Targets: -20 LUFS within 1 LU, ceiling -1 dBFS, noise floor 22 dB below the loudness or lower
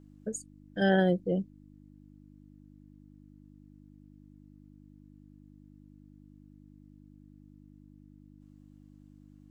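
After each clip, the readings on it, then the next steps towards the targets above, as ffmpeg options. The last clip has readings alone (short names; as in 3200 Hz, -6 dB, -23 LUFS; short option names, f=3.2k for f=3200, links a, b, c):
hum 50 Hz; harmonics up to 300 Hz; hum level -52 dBFS; loudness -30.0 LUFS; peak -14.0 dBFS; loudness target -20.0 LUFS
-> -af "bandreject=f=50:t=h:w=4,bandreject=f=100:t=h:w=4,bandreject=f=150:t=h:w=4,bandreject=f=200:t=h:w=4,bandreject=f=250:t=h:w=4,bandreject=f=300:t=h:w=4"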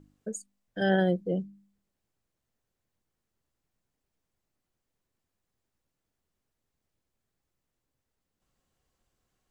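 hum none; loudness -29.0 LUFS; peak -14.5 dBFS; loudness target -20.0 LUFS
-> -af "volume=9dB"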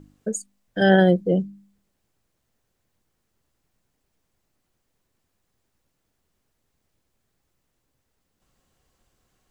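loudness -20.5 LUFS; peak -5.5 dBFS; noise floor -75 dBFS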